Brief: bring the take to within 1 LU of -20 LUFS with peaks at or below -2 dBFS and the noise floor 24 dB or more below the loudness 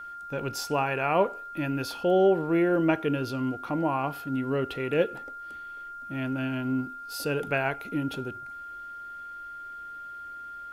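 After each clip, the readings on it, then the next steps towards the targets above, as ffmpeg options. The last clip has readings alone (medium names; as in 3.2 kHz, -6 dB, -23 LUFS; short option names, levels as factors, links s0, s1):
steady tone 1.4 kHz; tone level -38 dBFS; loudness -28.0 LUFS; peak level -11.5 dBFS; loudness target -20.0 LUFS
-> -af "bandreject=f=1400:w=30"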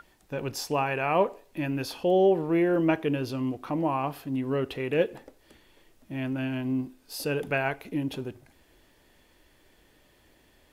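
steady tone not found; loudness -28.5 LUFS; peak level -11.0 dBFS; loudness target -20.0 LUFS
-> -af "volume=2.66"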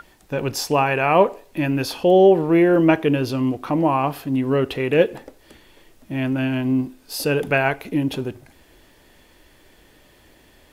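loudness -20.0 LUFS; peak level -2.5 dBFS; noise floor -54 dBFS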